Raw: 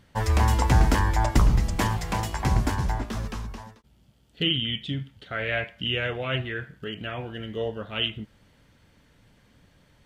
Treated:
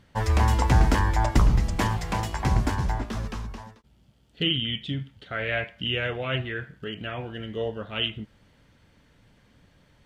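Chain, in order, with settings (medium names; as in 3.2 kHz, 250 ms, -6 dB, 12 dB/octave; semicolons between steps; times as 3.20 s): treble shelf 8.9 kHz -6.5 dB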